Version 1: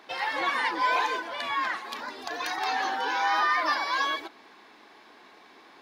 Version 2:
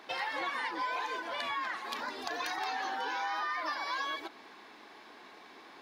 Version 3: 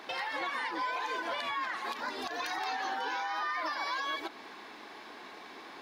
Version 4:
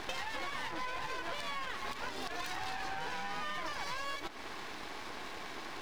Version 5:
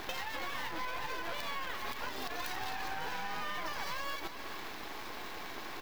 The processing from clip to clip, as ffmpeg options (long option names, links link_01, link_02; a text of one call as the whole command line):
ffmpeg -i in.wav -af "acompressor=threshold=-33dB:ratio=5" out.wav
ffmpeg -i in.wav -af "alimiter=level_in=6.5dB:limit=-24dB:level=0:latency=1:release=193,volume=-6.5dB,volume=5dB" out.wav
ffmpeg -i in.wav -af "aeval=exprs='max(val(0),0)':channel_layout=same,acompressor=threshold=-46dB:ratio=3,volume=9dB" out.wav
ffmpeg -i in.wav -af "aexciter=amount=4.9:drive=3.9:freq=12000,aecho=1:1:409:0.282" out.wav